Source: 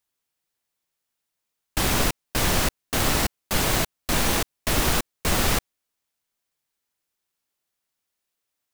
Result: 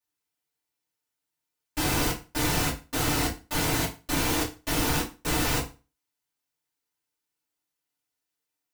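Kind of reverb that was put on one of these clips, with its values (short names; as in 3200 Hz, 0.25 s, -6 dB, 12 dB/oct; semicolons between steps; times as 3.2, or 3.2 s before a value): FDN reverb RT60 0.31 s, low-frequency decay 1.1×, high-frequency decay 0.9×, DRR -8.5 dB; gain -12.5 dB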